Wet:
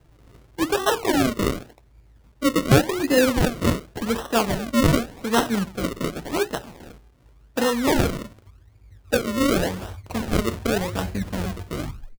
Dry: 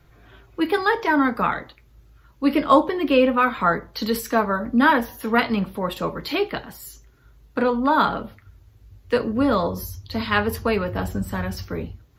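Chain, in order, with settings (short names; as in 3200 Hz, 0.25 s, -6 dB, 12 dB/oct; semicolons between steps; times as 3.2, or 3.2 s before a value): tape stop at the end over 0.51 s; decimation with a swept rate 37×, swing 100% 0.88 Hz; gain -1 dB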